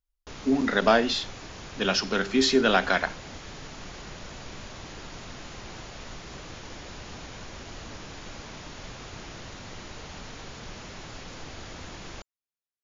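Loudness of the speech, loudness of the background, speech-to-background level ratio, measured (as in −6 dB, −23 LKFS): −24.0 LKFS, −41.5 LKFS, 17.5 dB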